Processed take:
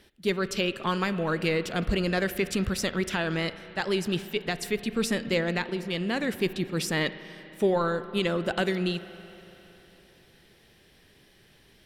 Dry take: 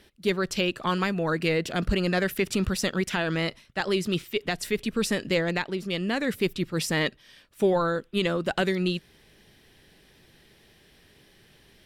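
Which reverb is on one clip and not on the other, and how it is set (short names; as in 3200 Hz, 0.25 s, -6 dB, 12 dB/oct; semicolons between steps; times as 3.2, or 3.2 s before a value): spring tank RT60 3.4 s, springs 35/57 ms, chirp 25 ms, DRR 12.5 dB; gain -1.5 dB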